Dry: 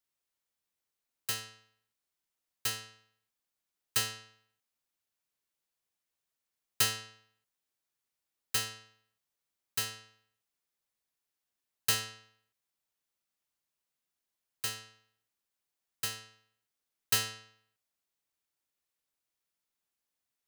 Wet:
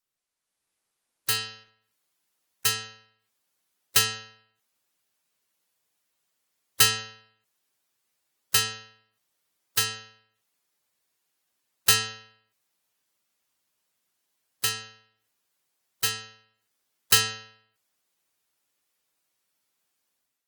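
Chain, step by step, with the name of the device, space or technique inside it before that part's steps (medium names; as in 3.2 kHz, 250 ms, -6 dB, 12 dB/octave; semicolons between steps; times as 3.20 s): noise-suppressed video call (high-pass 100 Hz 6 dB/octave; spectral gate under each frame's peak -15 dB strong; level rider gain up to 9.5 dB; trim +1 dB; Opus 24 kbps 48 kHz)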